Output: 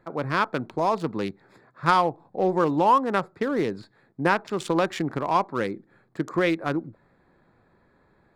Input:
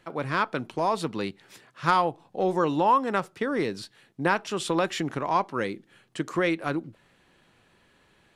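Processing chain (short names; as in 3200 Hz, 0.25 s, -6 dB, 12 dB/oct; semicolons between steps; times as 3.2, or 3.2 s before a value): Wiener smoothing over 15 samples; gain +2.5 dB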